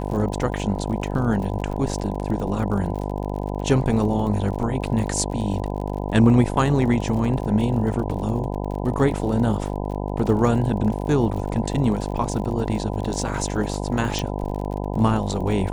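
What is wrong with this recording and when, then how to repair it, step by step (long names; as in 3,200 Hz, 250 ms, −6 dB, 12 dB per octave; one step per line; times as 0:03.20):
mains buzz 50 Hz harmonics 20 −27 dBFS
surface crackle 53 per second −31 dBFS
0:14.19: click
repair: click removal
hum removal 50 Hz, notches 20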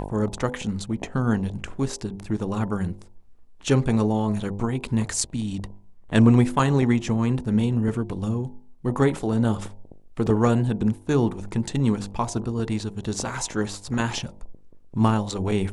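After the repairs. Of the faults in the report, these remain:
none of them is left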